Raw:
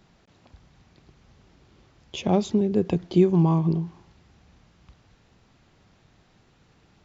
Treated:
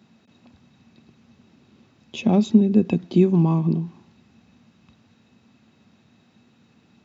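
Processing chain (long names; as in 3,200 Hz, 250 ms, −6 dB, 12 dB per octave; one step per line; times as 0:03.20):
high-pass filter 88 Hz 24 dB per octave
hollow resonant body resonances 230/2,600/3,800 Hz, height 14 dB, ringing for 70 ms
level −1.5 dB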